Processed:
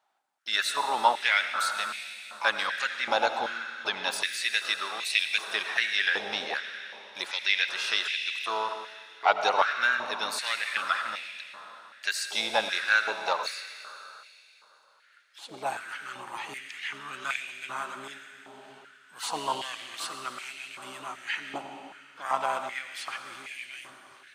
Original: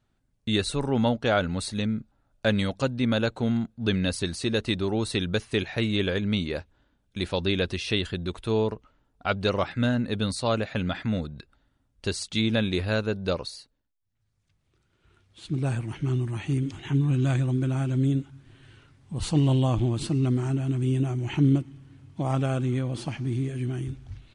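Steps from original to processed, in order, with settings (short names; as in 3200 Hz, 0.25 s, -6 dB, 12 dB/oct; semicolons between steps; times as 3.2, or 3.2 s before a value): harmoniser +7 st -12 dB; digital reverb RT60 3.1 s, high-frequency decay 1×, pre-delay 45 ms, DRR 6.5 dB; stepped high-pass 2.6 Hz 810–2300 Hz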